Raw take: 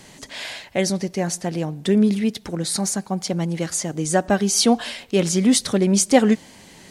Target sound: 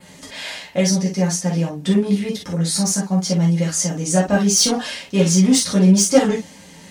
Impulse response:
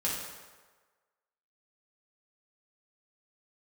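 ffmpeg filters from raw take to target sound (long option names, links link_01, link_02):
-filter_complex "[0:a]adynamicequalizer=threshold=0.01:dfrequency=5900:dqfactor=2.5:tfrequency=5900:tqfactor=2.5:attack=5:release=100:ratio=0.375:range=3:mode=boostabove:tftype=bell,acontrast=74[link_01];[1:a]atrim=start_sample=2205,atrim=end_sample=3087[link_02];[link_01][link_02]afir=irnorm=-1:irlink=0,volume=-9.5dB"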